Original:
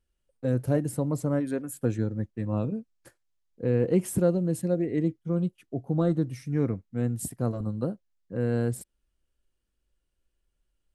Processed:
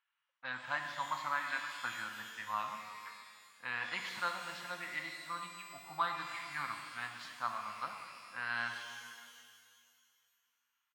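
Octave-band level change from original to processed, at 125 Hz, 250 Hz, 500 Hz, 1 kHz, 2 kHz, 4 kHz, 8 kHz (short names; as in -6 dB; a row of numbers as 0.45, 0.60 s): -31.5 dB, -30.0 dB, -24.0 dB, +6.0 dB, +9.5 dB, n/a, -11.5 dB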